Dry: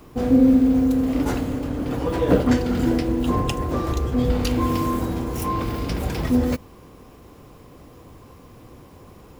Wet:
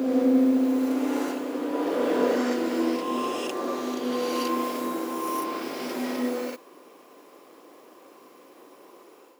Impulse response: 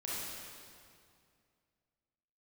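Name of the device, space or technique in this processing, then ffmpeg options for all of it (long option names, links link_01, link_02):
ghost voice: -filter_complex "[0:a]areverse[link_01];[1:a]atrim=start_sample=2205[link_02];[link_01][link_02]afir=irnorm=-1:irlink=0,areverse,highpass=frequency=320:width=0.5412,highpass=frequency=320:width=1.3066,volume=-4dB"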